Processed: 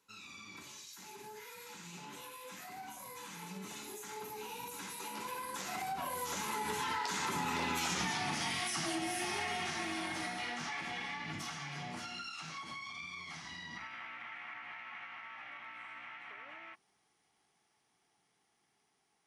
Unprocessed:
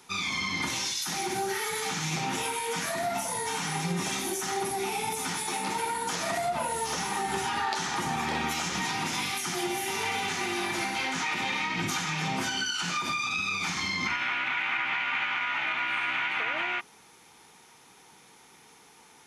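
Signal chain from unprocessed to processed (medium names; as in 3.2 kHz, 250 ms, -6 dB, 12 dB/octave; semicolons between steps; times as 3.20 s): Doppler pass-by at 7.98 s, 30 m/s, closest 6.3 m; compression 10:1, threshold -44 dBFS, peak gain reduction 16 dB; trim +11.5 dB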